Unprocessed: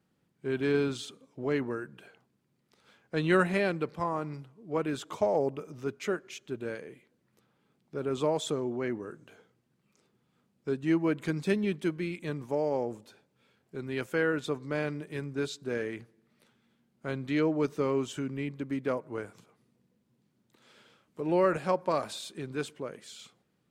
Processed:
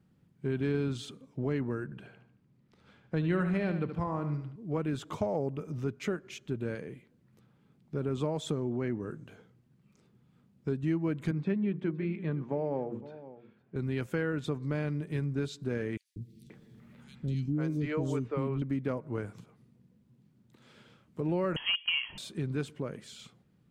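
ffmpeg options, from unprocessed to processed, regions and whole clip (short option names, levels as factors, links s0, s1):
-filter_complex "[0:a]asettb=1/sr,asplit=3[s0][s1][s2];[s0]atrim=end=1.844[s3];[s1]atrim=start=1.84:end=4.56,asetpts=PTS-STARTPTS,afade=t=in:d=0.004:c=qsin,afade=t=out:st=2.716:d=0.004:c=qsin,lowpass=f=4000:p=1,aecho=1:1:74|148|222|296:0.316|0.126|0.0506|0.0202,atrim=end_sample=119952[s4];[s2]atrim=start=4.556[s5];[s3][s4]acrossfade=d=0.004:c1=hsin:c2=qsin[s6];[s6][s5]acrossfade=d=0.004:c1=qsin:c2=hsin,asettb=1/sr,asplit=3[s7][s8][s9];[s7]atrim=end=11.314[s10];[s8]atrim=start=11.31:end=13.76,asetpts=PTS-STARTPTS,afade=t=in:d=0.004:c=qsin,afade=t=out:st=2.446:d=0.004:c=qsin,highpass=140,lowpass=2300,bandreject=f=60:t=h:w=6,bandreject=f=120:t=h:w=6,bandreject=f=180:t=h:w=6,bandreject=f=240:t=h:w=6,bandreject=f=300:t=h:w=6,bandreject=f=360:t=h:w=6,bandreject=f=420:t=h:w=6,bandreject=f=480:t=h:w=6,aecho=1:1:512:0.106,atrim=end_sample=108045[s11];[s9]atrim=start=13.756[s12];[s10][s11]acrossfade=d=0.004:c1=hsin:c2=qsin[s13];[s13][s12]acrossfade=d=0.004:c1=qsin:c2=hsin,asettb=1/sr,asplit=3[s14][s15][s16];[s14]atrim=end=15.974[s17];[s15]atrim=start=15.97:end=18.62,asetpts=PTS-STARTPTS,afade=t=in:d=0.004:c=qsin,afade=t=out:st=2.646:d=0.004:c=qsin,acompressor=mode=upward:threshold=0.00355:ratio=2.5:attack=3.2:release=140:knee=2.83:detection=peak,acrossover=split=370|3400[s18][s19][s20];[s18]adelay=190[s21];[s19]adelay=530[s22];[s21][s22][s20]amix=inputs=3:normalize=0,atrim=end_sample=116865[s23];[s16]atrim=start=18.616[s24];[s17][s23]acrossfade=d=0.004:c1=hsin:c2=qsin[s25];[s25][s24]acrossfade=d=0.004:c1=qsin:c2=hsin,asettb=1/sr,asplit=3[s26][s27][s28];[s26]atrim=end=21.564[s29];[s27]atrim=start=21.56:end=22.18,asetpts=PTS-STARTPTS,afade=t=in:d=0.004:c=qsin,afade=t=out:st=0.616:d=0.004:c=qsin,equalizer=f=620:t=o:w=1.6:g=6.5,volume=5.62,asoftclip=hard,volume=0.178,lowpass=f=2900:t=q:w=0.5098,lowpass=f=2900:t=q:w=0.6013,lowpass=f=2900:t=q:w=0.9,lowpass=f=2900:t=q:w=2.563,afreqshift=-3400[s30];[s28]atrim=start=22.176[s31];[s29][s30]acrossfade=d=0.004:c1=hsin:c2=qsin[s32];[s32][s31]acrossfade=d=0.004:c1=qsin:c2=hsin,bass=f=250:g=12,treble=f=4000:g=-3,acompressor=threshold=0.0316:ratio=2.5"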